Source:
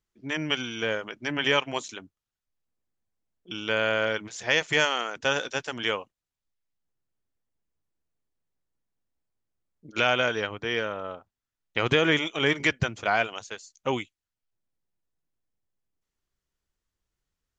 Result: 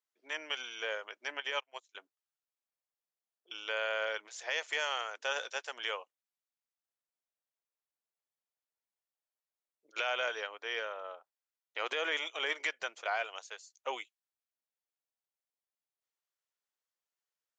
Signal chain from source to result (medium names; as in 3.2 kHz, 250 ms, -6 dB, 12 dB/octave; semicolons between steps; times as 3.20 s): high-pass 500 Hz 24 dB/octave; peak limiter -14.5 dBFS, peak gain reduction 6 dB; 1.40–1.95 s: upward expansion 2.5:1, over -43 dBFS; trim -7 dB